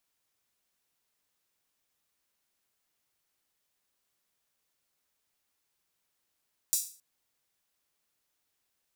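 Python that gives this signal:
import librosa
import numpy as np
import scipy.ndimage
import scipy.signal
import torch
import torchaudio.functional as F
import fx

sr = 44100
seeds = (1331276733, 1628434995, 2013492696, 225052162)

y = fx.drum_hat_open(sr, length_s=0.27, from_hz=6500.0, decay_s=0.4)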